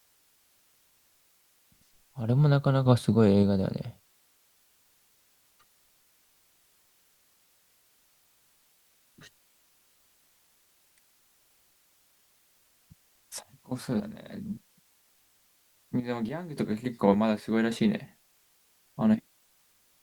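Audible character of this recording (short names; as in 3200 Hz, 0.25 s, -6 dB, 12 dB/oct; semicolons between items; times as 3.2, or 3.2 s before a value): random-step tremolo, depth 95%; a quantiser's noise floor 12-bit, dither triangular; Opus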